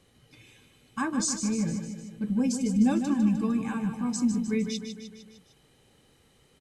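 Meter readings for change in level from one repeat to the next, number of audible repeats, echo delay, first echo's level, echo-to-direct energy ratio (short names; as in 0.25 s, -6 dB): -4.5 dB, 5, 0.152 s, -8.0 dB, -6.0 dB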